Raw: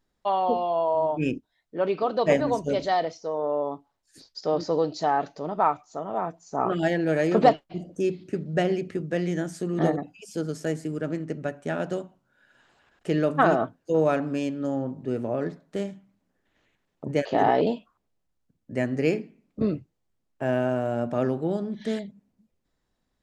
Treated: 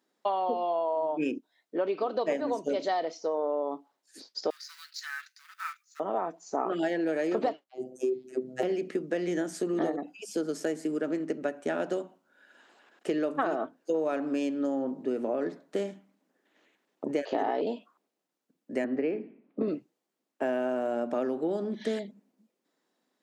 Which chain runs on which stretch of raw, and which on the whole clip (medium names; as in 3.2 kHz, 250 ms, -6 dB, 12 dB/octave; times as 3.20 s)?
4.50–6.00 s: companding laws mixed up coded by A + steep high-pass 1.5 kHz 48 dB/octave + peaking EQ 3.1 kHz -5.5 dB 0.39 oct
7.69–8.63 s: high-order bell 2.3 kHz -8.5 dB 2.7 oct + phase dispersion lows, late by 66 ms, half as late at 450 Hz + robot voice 128 Hz
18.84–19.68 s: distance through air 430 m + three bands compressed up and down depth 40%
whole clip: high-pass 260 Hz 24 dB/octave; bass shelf 330 Hz +5 dB; compression 6:1, threshold -28 dBFS; trim +2 dB